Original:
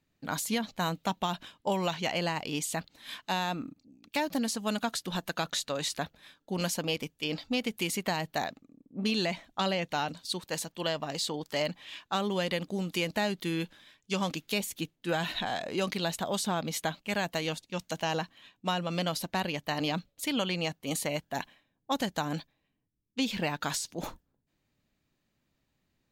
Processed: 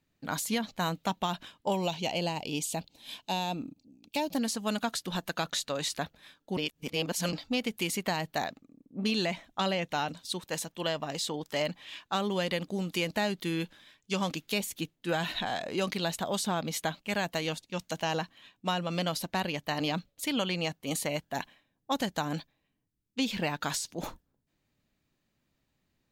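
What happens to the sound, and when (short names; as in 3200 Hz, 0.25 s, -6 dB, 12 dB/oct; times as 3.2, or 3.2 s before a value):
1.75–4.35 band shelf 1500 Hz -11 dB 1.1 oct
6.57–7.33 reverse
9.22–11.7 notch 4500 Hz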